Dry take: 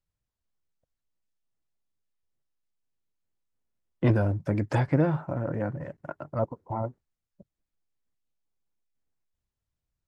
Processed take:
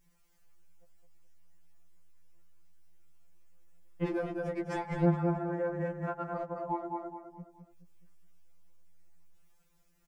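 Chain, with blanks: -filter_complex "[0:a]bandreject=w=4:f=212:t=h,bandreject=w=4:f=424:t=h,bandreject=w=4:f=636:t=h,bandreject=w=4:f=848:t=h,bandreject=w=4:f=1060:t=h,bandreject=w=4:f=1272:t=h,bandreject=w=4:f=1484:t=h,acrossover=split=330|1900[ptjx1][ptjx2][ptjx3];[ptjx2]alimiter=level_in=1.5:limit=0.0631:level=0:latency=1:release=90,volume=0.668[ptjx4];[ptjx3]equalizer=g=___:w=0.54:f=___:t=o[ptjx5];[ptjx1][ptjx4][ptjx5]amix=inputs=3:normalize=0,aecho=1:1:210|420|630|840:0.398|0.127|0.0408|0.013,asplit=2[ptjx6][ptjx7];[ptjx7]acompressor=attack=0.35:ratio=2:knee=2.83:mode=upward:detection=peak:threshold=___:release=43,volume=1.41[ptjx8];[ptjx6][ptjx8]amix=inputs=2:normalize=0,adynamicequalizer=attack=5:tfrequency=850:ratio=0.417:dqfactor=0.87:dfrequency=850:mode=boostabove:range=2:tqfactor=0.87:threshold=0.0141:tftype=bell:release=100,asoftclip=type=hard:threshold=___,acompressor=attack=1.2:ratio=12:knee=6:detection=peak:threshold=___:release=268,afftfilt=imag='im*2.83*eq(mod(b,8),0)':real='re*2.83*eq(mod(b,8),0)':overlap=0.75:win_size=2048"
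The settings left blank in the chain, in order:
-6.5, 3900, 0.00355, 0.299, 0.0708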